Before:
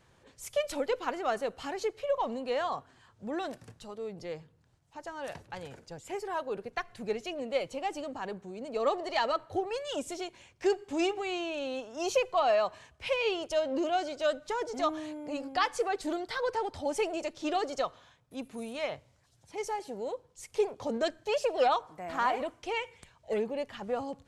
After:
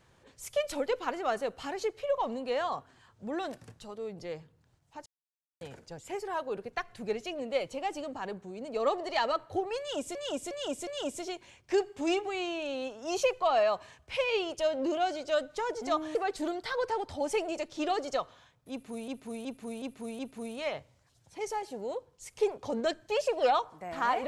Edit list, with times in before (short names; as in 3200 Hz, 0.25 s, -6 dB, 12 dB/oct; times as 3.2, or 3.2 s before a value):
5.06–5.61 mute
9.79–10.15 loop, 4 plays
15.07–15.8 cut
18.36–18.73 loop, 5 plays